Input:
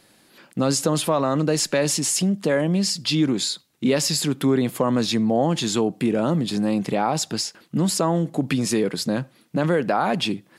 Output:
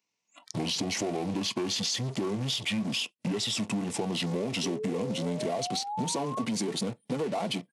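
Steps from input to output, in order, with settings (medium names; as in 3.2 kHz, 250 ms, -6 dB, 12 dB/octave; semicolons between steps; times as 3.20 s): gliding tape speed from 103% -> 171%; in parallel at -8 dB: fuzz box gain 44 dB, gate -40 dBFS; on the sum: bass shelf 230 Hz -7 dB; painted sound rise, 4.63–6.45 s, 710–2100 Hz -26 dBFS; peaking EQ 2.9 kHz -8.5 dB 0.48 oct; band-stop 2.3 kHz, Q 9.3; pitch shift -10.5 st; high-pass 120 Hz 24 dB/octave; on a send at -12 dB: reverberation, pre-delay 3 ms; on the sum: spectral noise reduction 24 dB; compression, threshold -20 dBFS, peak gain reduction 8 dB; tape noise reduction on one side only encoder only; trim -7.5 dB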